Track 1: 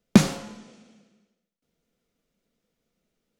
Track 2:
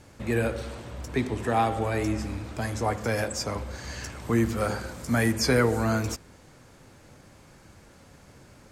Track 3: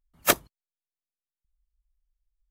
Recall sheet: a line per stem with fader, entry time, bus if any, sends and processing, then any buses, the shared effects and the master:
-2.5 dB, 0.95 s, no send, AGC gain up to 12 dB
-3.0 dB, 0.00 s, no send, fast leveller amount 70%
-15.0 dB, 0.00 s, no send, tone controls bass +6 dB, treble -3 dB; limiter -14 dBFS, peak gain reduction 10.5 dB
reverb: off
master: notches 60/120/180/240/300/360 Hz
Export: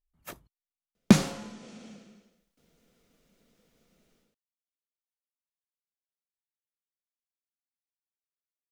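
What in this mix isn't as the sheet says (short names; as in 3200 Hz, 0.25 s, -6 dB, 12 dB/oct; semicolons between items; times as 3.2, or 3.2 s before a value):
stem 2: muted; master: missing notches 60/120/180/240/300/360 Hz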